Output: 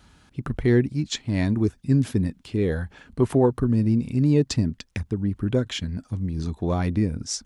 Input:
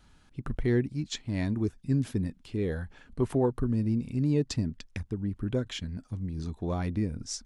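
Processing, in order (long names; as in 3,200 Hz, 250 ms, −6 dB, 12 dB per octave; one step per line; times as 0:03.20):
high-pass filter 46 Hz
level +7 dB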